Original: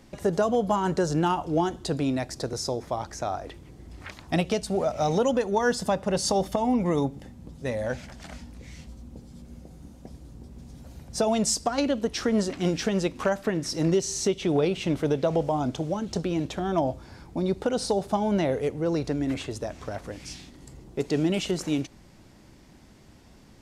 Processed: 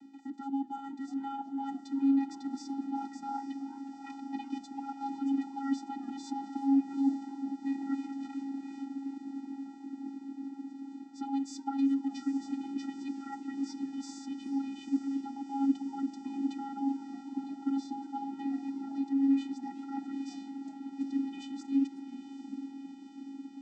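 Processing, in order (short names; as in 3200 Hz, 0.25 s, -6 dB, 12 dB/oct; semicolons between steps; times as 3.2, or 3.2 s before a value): reverse; compressor, threshold -31 dBFS, peak gain reduction 12 dB; reverse; diffused feedback echo 0.843 s, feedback 73%, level -11 dB; vocoder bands 16, square 274 Hz; warbling echo 0.371 s, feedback 33%, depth 205 cents, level -21 dB; gain +1.5 dB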